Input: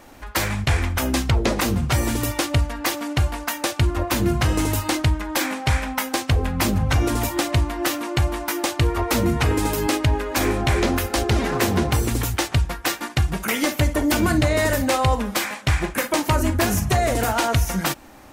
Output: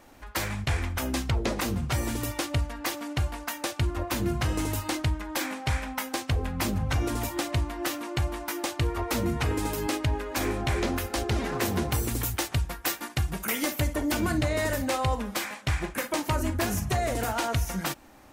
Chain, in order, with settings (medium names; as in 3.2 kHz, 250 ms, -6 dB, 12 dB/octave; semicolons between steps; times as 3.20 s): 11.65–13.95 s: treble shelf 11 kHz +11 dB; trim -7.5 dB